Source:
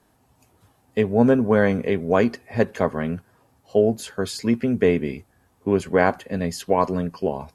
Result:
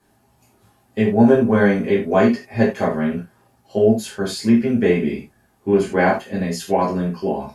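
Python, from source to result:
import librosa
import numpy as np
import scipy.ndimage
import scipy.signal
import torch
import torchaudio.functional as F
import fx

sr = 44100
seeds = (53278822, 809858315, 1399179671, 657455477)

y = fx.rev_gated(x, sr, seeds[0], gate_ms=120, shape='falling', drr_db=-6.5)
y = y * librosa.db_to_amplitude(-4.5)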